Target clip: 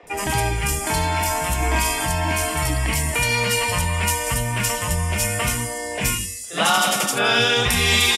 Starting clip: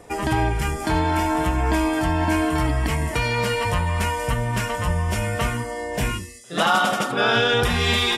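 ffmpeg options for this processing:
-filter_complex "[0:a]bandreject=f=50:t=h:w=6,bandreject=f=100:t=h:w=6,acrossover=split=330|3300[a][b][c];[a]adelay=30[d];[c]adelay=70[e];[d][b][e]amix=inputs=3:normalize=0,aexciter=amount=2.4:drive=6.1:freq=2.1k,asettb=1/sr,asplit=3[f][g][h];[f]atrim=end=1.584[i];[g]atrim=start=1.58:end=2.05,asetpts=PTS-STARTPTS,afade=t=in:d=0.004:c=qsin,afade=t=out:st=0.466:d=0.004:c=qsin,asplit=2[j][k];[k]adelay=42,volume=-2.5dB[l];[j][l]amix=inputs=2:normalize=0,atrim=end_sample=20727[m];[h]atrim=start=2.046[n];[i][m]acrossfade=d=0.004:c1=hsin:c2=qsin[o];[o][n]acrossfade=d=0.004:c1=qsin:c2=hsin"

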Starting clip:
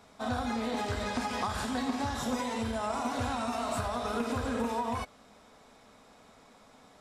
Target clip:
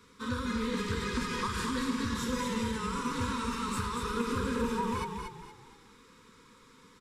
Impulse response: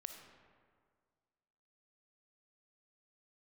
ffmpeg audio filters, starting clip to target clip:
-filter_complex "[0:a]asuperstop=centerf=700:order=20:qfactor=1.8,asplit=5[a][b][c][d][e];[b]adelay=234,afreqshift=-34,volume=-5dB[f];[c]adelay=468,afreqshift=-68,volume=-14.1dB[g];[d]adelay=702,afreqshift=-102,volume=-23.2dB[h];[e]adelay=936,afreqshift=-136,volume=-32.4dB[i];[a][f][g][h][i]amix=inputs=5:normalize=0"

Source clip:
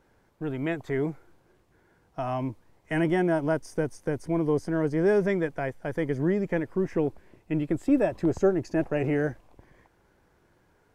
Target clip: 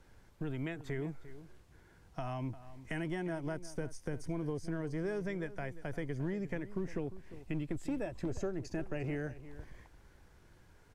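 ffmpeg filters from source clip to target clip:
-filter_complex "[0:a]acrossover=split=320|2600[a][b][c];[a]volume=25.5dB,asoftclip=hard,volume=-25.5dB[d];[d][b][c]amix=inputs=3:normalize=0,crystalizer=i=8:c=0,acompressor=threshold=-38dB:ratio=2.5,aemphasis=mode=reproduction:type=bsi,asplit=2[e][f];[f]adelay=349.9,volume=-15dB,highshelf=f=4k:g=-7.87[g];[e][g]amix=inputs=2:normalize=0,volume=-5.5dB"

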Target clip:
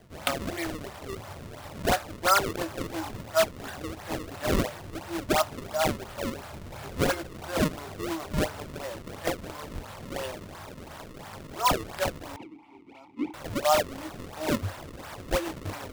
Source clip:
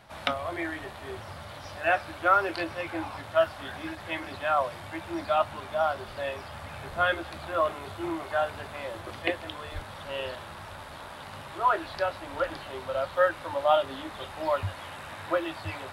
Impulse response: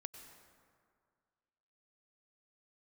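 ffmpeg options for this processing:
-filter_complex "[0:a]acrusher=samples=32:mix=1:aa=0.000001:lfo=1:lforange=51.2:lforate=2.9,asettb=1/sr,asplit=3[a][b][c];[a]atrim=end=12.364[d];[b]atrim=start=12.36:end=13.34,asetpts=PTS-STARTPTS,afade=t=in:d=0.004:c=qsin,afade=t=out:st=0.976:d=0.004:c=qsin,asplit=3[e][f][g];[e]bandpass=f=300:t=q:w=8,volume=0dB[h];[f]bandpass=f=870:t=q:w=8,volume=-6dB[i];[g]bandpass=f=2.24k:t=q:w=8,volume=-9dB[j];[h][i][j]amix=inputs=3:normalize=0[k];[c]atrim=start=13.336[l];[d][k]acrossfade=d=0.004:c1=hsin:c2=qsin[m];[m][l]acrossfade=d=0.004:c1=qsin:c2=hsin"

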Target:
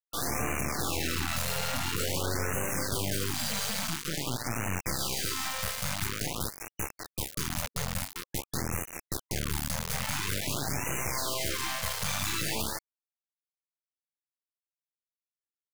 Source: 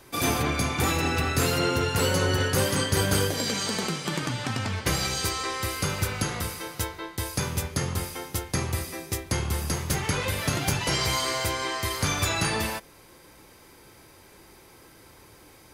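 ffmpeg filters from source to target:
-filter_complex "[0:a]alimiter=limit=-18.5dB:level=0:latency=1:release=20,aeval=exprs='(tanh(15.8*val(0)+0.55)-tanh(0.55))/15.8':c=same,asplit=2[a][b];[b]aecho=0:1:142:0.2[c];[a][c]amix=inputs=2:normalize=0,acrusher=bits=4:mix=0:aa=0.000001,afftfilt=real='re*(1-between(b*sr/1024,300*pow(4200/300,0.5+0.5*sin(2*PI*0.48*pts/sr))/1.41,300*pow(4200/300,0.5+0.5*sin(2*PI*0.48*pts/sr))*1.41))':imag='im*(1-between(b*sr/1024,300*pow(4200/300,0.5+0.5*sin(2*PI*0.48*pts/sr))/1.41,300*pow(4200/300,0.5+0.5*sin(2*PI*0.48*pts/sr))*1.41))':win_size=1024:overlap=0.75"

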